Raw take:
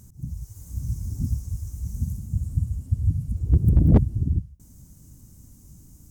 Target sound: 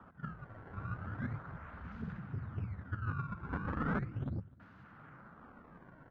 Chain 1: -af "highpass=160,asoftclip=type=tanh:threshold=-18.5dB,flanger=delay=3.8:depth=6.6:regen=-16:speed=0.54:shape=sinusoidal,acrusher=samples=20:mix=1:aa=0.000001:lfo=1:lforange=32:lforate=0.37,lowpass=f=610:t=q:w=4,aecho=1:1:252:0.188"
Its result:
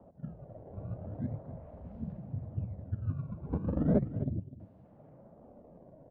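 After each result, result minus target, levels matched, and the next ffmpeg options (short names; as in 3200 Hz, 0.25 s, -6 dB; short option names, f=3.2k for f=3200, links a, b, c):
1000 Hz band -12.5 dB; echo-to-direct +8.5 dB; soft clip: distortion -8 dB
-af "highpass=160,asoftclip=type=tanh:threshold=-18.5dB,flanger=delay=3.8:depth=6.6:regen=-16:speed=0.54:shape=sinusoidal,acrusher=samples=20:mix=1:aa=0.000001:lfo=1:lforange=32:lforate=0.37,lowpass=f=1.4k:t=q:w=4,aecho=1:1:252:0.0708"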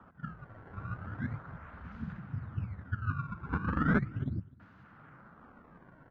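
soft clip: distortion -8 dB
-af "highpass=160,asoftclip=type=tanh:threshold=-29.5dB,flanger=delay=3.8:depth=6.6:regen=-16:speed=0.54:shape=sinusoidal,acrusher=samples=20:mix=1:aa=0.000001:lfo=1:lforange=32:lforate=0.37,lowpass=f=1.4k:t=q:w=4,aecho=1:1:252:0.0708"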